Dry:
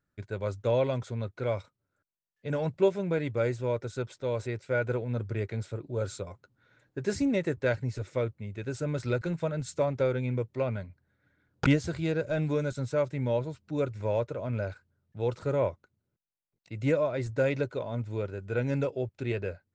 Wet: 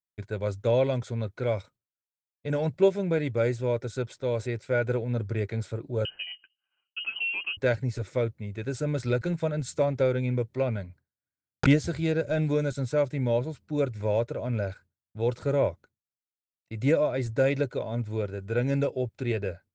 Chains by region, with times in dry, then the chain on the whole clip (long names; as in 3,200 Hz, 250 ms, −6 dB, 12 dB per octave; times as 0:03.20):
0:06.05–0:07.57: spectral tilt −2 dB per octave + downward compressor 1.5 to 1, threshold −44 dBFS + voice inversion scrambler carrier 3,000 Hz
whole clip: downward expander −49 dBFS; notch filter 2,800 Hz, Q 28; dynamic equaliser 1,100 Hz, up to −5 dB, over −50 dBFS, Q 2.3; level +3 dB